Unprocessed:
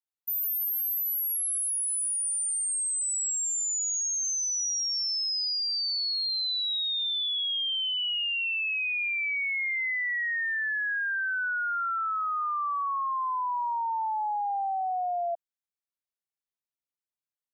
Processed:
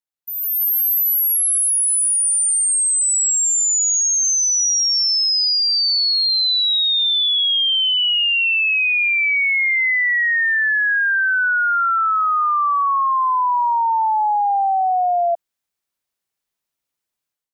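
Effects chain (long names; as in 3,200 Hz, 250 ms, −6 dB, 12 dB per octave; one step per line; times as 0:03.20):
automatic gain control gain up to 12 dB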